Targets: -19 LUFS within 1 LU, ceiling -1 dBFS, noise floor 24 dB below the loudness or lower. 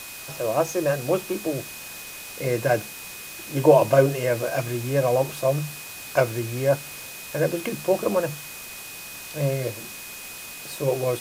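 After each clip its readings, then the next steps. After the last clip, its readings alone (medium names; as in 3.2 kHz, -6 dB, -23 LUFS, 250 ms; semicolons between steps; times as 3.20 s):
steady tone 2.5 kHz; tone level -42 dBFS; noise floor -39 dBFS; noise floor target -48 dBFS; loudness -24.0 LUFS; peak level -3.5 dBFS; loudness target -19.0 LUFS
-> band-stop 2.5 kHz, Q 30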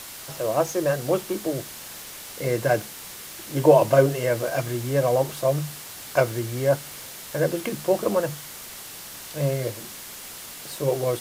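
steady tone not found; noise floor -40 dBFS; noise floor target -48 dBFS
-> noise reduction 8 dB, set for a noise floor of -40 dBFS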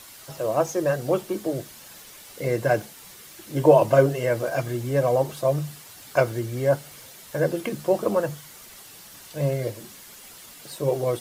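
noise floor -46 dBFS; noise floor target -48 dBFS
-> noise reduction 6 dB, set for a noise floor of -46 dBFS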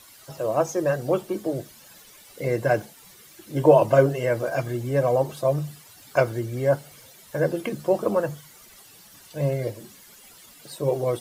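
noise floor -50 dBFS; loudness -24.0 LUFS; peak level -3.5 dBFS; loudness target -19.0 LUFS
-> trim +5 dB; peak limiter -1 dBFS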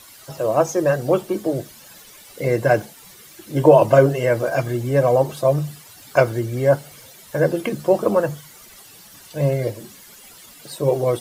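loudness -19.5 LUFS; peak level -1.0 dBFS; noise floor -45 dBFS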